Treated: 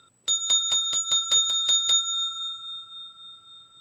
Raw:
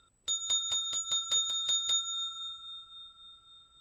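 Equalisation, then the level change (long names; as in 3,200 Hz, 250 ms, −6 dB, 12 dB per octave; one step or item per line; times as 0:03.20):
high-pass filter 100 Hz 24 dB per octave
+8.5 dB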